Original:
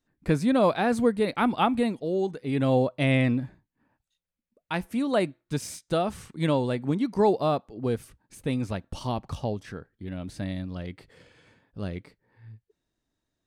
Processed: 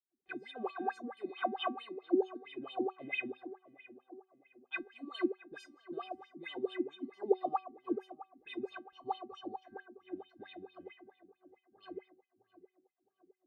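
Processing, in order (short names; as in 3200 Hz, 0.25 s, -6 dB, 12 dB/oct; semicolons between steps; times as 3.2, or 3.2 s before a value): vibrato 12 Hz 31 cents; in parallel at +1.5 dB: compressor, threshold -36 dBFS, peak gain reduction 18 dB; on the sum: low-pass opened by the level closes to 380 Hz, open at -22 dBFS; metallic resonator 370 Hz, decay 0.43 s, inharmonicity 0.008; wah 4.5 Hz 220–3400 Hz, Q 6.6; on a send: tape echo 0.662 s, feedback 56%, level -14 dB, low-pass 1300 Hz; on the sum: gain +15.5 dB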